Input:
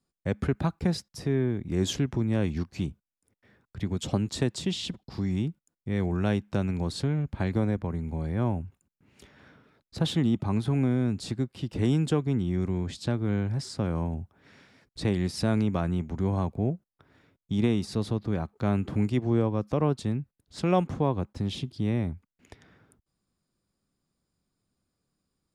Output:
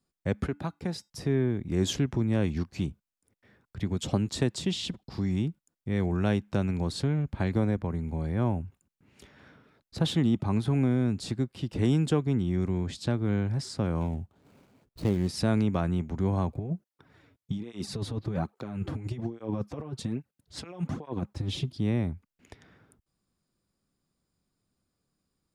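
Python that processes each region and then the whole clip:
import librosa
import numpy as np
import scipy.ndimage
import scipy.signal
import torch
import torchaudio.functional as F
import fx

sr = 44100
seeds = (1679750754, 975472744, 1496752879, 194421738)

y = fx.chain(x, sr, fx.highpass(hz=160.0, slope=6),
    fx.comb_fb(f0_hz=290.0, decay_s=0.3, harmonics='odd', damping=0.0, mix_pct=40), at=(0.46, 1.1))
y = fx.chain(y, sr, fx.median_filter(points=25),
    fx.high_shelf(hz=3900.0, db=6.0), at=(14.01, 15.28))
y = fx.chain(y, sr, fx.over_compress(threshold_db=-29.0, ratio=-0.5),
    fx.flanger_cancel(hz=1.2, depth_ms=5.9), at=(16.48, 21.77))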